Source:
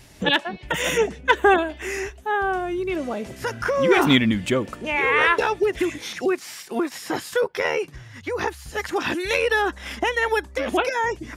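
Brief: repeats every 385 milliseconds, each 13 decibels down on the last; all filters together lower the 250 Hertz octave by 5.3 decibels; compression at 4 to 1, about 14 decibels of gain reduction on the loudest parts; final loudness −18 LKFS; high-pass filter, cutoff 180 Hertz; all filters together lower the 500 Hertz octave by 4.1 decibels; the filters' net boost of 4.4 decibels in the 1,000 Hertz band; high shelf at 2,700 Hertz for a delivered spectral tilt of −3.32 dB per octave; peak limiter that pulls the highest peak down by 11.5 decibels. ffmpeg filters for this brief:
ffmpeg -i in.wav -af "highpass=180,equalizer=frequency=250:width_type=o:gain=-4.5,equalizer=frequency=500:width_type=o:gain=-5,equalizer=frequency=1000:width_type=o:gain=6.5,highshelf=frequency=2700:gain=5,acompressor=threshold=-25dB:ratio=4,alimiter=limit=-22dB:level=0:latency=1,aecho=1:1:385|770|1155:0.224|0.0493|0.0108,volume=13.5dB" out.wav

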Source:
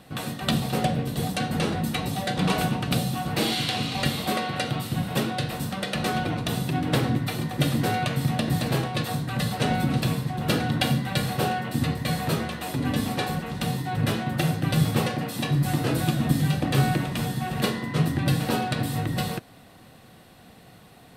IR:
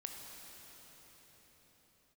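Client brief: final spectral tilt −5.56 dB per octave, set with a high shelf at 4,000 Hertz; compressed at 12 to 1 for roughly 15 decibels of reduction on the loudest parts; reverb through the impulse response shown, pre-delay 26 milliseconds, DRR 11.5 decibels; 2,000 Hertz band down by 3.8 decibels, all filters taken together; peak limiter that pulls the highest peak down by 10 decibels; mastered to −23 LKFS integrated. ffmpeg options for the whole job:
-filter_complex "[0:a]equalizer=frequency=2000:width_type=o:gain=-4,highshelf=frequency=4000:gain=-4.5,acompressor=threshold=-31dB:ratio=12,alimiter=level_in=2.5dB:limit=-24dB:level=0:latency=1,volume=-2.5dB,asplit=2[link_01][link_02];[1:a]atrim=start_sample=2205,adelay=26[link_03];[link_02][link_03]afir=irnorm=-1:irlink=0,volume=-9.5dB[link_04];[link_01][link_04]amix=inputs=2:normalize=0,volume=13.5dB"

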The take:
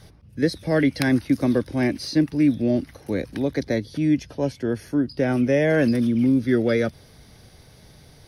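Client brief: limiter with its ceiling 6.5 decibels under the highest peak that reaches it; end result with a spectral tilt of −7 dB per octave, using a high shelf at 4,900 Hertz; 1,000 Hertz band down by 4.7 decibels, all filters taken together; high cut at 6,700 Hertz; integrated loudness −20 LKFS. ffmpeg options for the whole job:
ffmpeg -i in.wav -af "lowpass=6700,equalizer=frequency=1000:width_type=o:gain=-7,highshelf=frequency=4900:gain=-4,volume=4.5dB,alimiter=limit=-10dB:level=0:latency=1" out.wav

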